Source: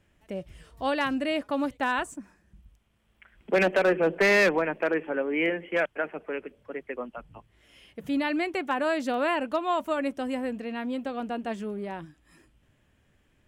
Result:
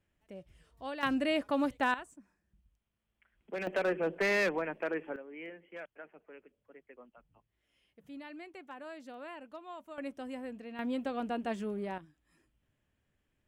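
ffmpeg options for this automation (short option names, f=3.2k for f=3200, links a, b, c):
-af "asetnsamples=n=441:p=0,asendcmd='1.03 volume volume -2.5dB;1.94 volume volume -15.5dB;3.67 volume volume -8.5dB;5.16 volume volume -19.5dB;9.98 volume volume -11dB;10.79 volume volume -3dB;11.98 volume volume -13dB',volume=-13dB"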